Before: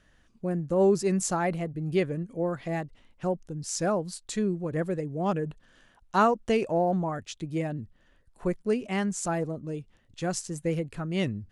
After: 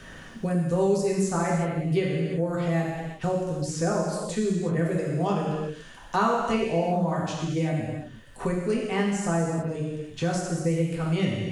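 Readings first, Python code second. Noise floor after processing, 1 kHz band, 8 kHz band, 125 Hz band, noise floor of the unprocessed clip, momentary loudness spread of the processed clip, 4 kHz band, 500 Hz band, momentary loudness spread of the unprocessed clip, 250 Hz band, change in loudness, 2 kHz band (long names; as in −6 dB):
−45 dBFS, +1.5 dB, −1.0 dB, +5.5 dB, −63 dBFS, 7 LU, +3.0 dB, +1.5 dB, 11 LU, +3.0 dB, +2.5 dB, +3.0 dB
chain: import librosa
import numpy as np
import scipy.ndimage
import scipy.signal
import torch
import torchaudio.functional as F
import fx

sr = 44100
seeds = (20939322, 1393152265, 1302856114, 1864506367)

y = fx.rev_gated(x, sr, seeds[0], gate_ms=390, shape='falling', drr_db=-4.0)
y = fx.band_squash(y, sr, depth_pct=70)
y = y * librosa.db_to_amplitude(-3.5)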